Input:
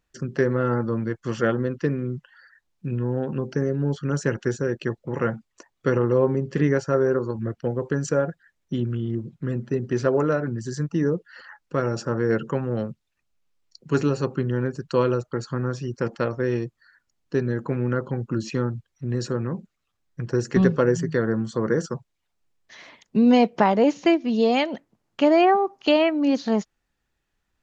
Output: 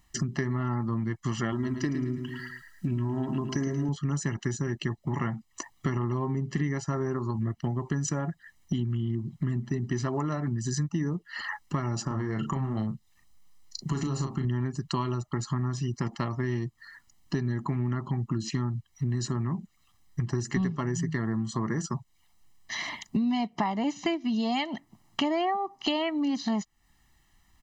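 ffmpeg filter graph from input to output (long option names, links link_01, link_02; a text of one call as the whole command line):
ffmpeg -i in.wav -filter_complex "[0:a]asettb=1/sr,asplit=3[link_01][link_02][link_03];[link_01]atrim=end=1.524[link_04];[link_02]atrim=start=1.52:end=3.89,asetpts=PTS-STARTPTS,afade=type=in:duration=0.004:curve=qsin,afade=type=out:start_time=2.366:duration=0.004:curve=qsin,highshelf=frequency=3800:gain=7,aecho=1:1:3.1:0.52,atrim=end_sample=104517,aecho=1:1:109|218|327|436:0.355|0.138|0.054|0.021,atrim=end_sample=104517[link_05];[link_03]atrim=start=3.886[link_06];[link_04][link_05]acrossfade=duration=0.004:curve1=hsin:curve2=qsin[link_07];[link_07][link_06]acrossfade=duration=0.004:curve1=qsin:curve2=hsin,asettb=1/sr,asplit=3[link_08][link_09][link_10];[link_08]atrim=end=12.054[link_11];[link_09]atrim=start=12.05:end=14.45,asetpts=PTS-STARTPTS,afade=type=in:duration=0.004:curve=qsin,afade=type=out:start_time=2.396:duration=0.004:curve=qsin,equalizer=frequency=2600:width_type=o:width=0.42:gain=-4,acompressor=threshold=-24dB:ratio=6:attack=3.2:release=140:knee=1:detection=peak,asplit=2[link_12][link_13];[link_13]adelay=37,volume=-6dB[link_14];[link_12][link_14]amix=inputs=2:normalize=0,atrim=end_sample=105840[link_15];[link_10]atrim=start=14.446[link_16];[link_11][link_15]acrossfade=duration=0.004:curve1=hsin:curve2=qsin[link_17];[link_17][link_16]acrossfade=duration=0.004:curve1=qsin:curve2=hsin,highshelf=frequency=5300:gain=6,aecho=1:1:1:0.98,acompressor=threshold=-35dB:ratio=5,volume=7dB" out.wav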